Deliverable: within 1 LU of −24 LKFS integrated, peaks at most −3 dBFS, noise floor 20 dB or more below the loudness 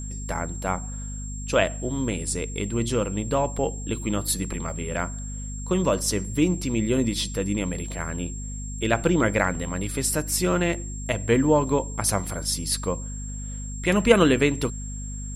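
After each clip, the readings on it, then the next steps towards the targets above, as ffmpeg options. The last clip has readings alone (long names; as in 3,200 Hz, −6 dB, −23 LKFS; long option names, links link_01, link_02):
mains hum 50 Hz; hum harmonics up to 250 Hz; level of the hum −31 dBFS; interfering tone 7,500 Hz; level of the tone −38 dBFS; integrated loudness −25.5 LKFS; sample peak −2.5 dBFS; target loudness −24.0 LKFS
→ -af "bandreject=frequency=50:width_type=h:width=6,bandreject=frequency=100:width_type=h:width=6,bandreject=frequency=150:width_type=h:width=6,bandreject=frequency=200:width_type=h:width=6,bandreject=frequency=250:width_type=h:width=6"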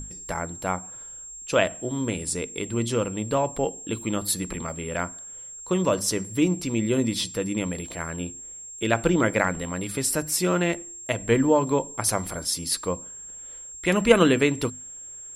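mains hum none found; interfering tone 7,500 Hz; level of the tone −38 dBFS
→ -af "bandreject=frequency=7500:width=30"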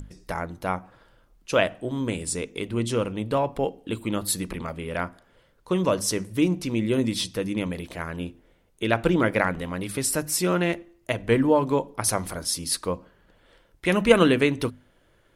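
interfering tone none found; integrated loudness −25.5 LKFS; sample peak −2.5 dBFS; target loudness −24.0 LKFS
→ -af "volume=1.5dB,alimiter=limit=-3dB:level=0:latency=1"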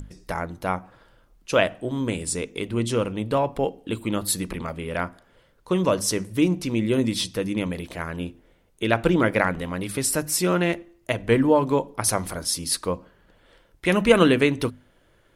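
integrated loudness −24.0 LKFS; sample peak −3.0 dBFS; background noise floor −60 dBFS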